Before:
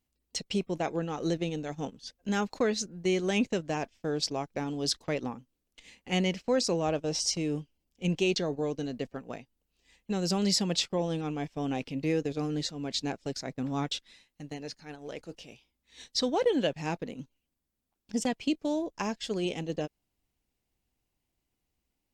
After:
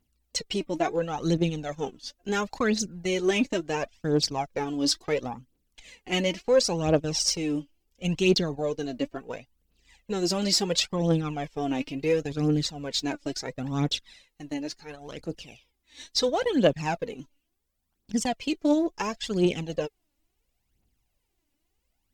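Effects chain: phaser 0.72 Hz, delay 3.6 ms, feedback 64%; in parallel at -11 dB: one-sided clip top -24 dBFS

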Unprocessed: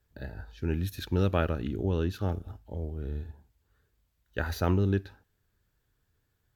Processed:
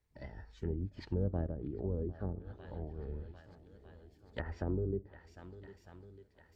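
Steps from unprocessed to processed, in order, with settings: formant shift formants +3 st; vibrato 4.8 Hz 9.2 cents; on a send: swung echo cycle 1.251 s, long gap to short 1.5:1, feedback 47%, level -18.5 dB; on the sum: treble ducked by the level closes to 500 Hz, closed at -25 dBFS; harmoniser -12 st -8 dB; gain -8 dB

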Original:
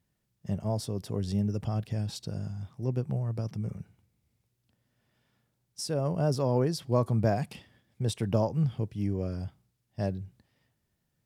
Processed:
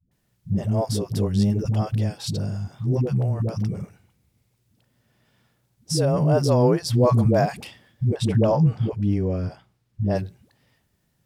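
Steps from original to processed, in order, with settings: 8.04–10.04 high shelf 5900 Hz -11 dB; dispersion highs, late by 0.114 s, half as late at 330 Hz; gain +8.5 dB

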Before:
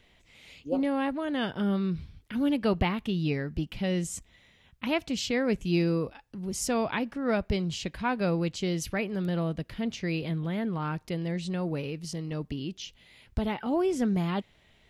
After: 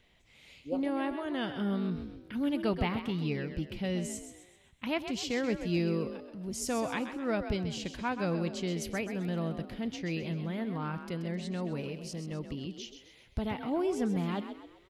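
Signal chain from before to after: frequency-shifting echo 0.13 s, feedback 42%, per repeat +44 Hz, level -9.5 dB; gain -4.5 dB

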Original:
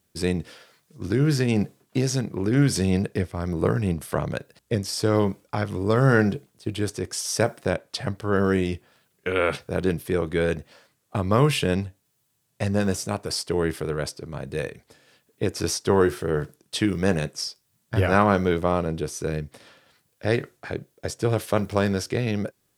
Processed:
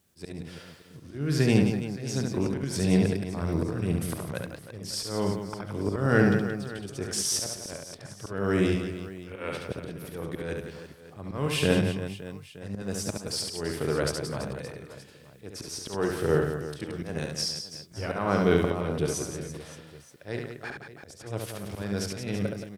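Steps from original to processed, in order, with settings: one diode to ground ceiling -9 dBFS; auto swell 0.383 s; reverse bouncing-ball echo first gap 70 ms, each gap 1.5×, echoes 5

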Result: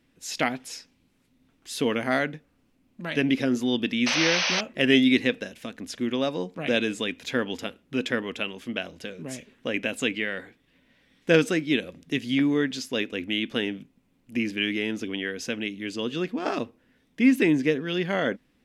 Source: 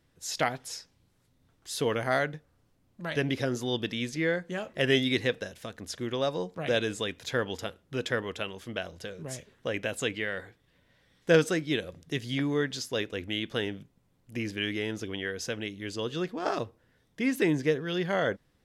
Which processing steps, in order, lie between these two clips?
painted sound noise, 4.06–4.61, 470–6300 Hz -28 dBFS; fifteen-band EQ 100 Hz -8 dB, 250 Hz +11 dB, 2500 Hz +8 dB

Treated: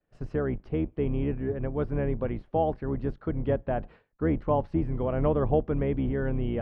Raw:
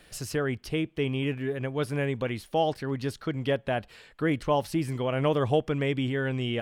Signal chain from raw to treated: octaver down 2 oct, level +1 dB; LPF 1100 Hz 12 dB/oct; expander -45 dBFS; bell 66 Hz -8.5 dB 0.61 oct; reverse; upward compressor, threshold -35 dBFS; reverse

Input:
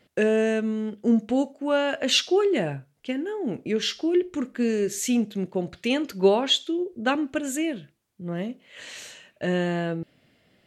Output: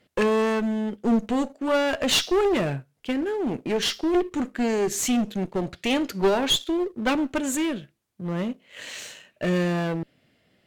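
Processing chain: sample leveller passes 1; one-sided clip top -24.5 dBFS

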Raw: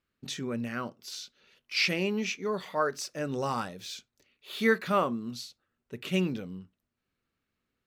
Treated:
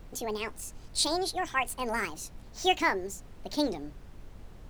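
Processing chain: speed glide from 183% -> 152%; added noise brown -45 dBFS

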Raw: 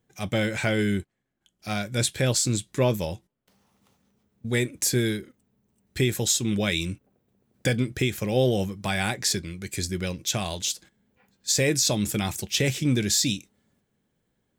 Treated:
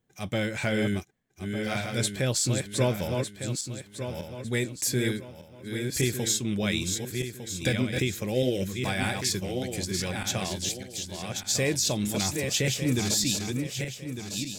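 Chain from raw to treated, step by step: regenerating reverse delay 0.602 s, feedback 54%, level -4.5 dB; spectral gain 8.34–8.68, 650–1300 Hz -13 dB; gain -3.5 dB

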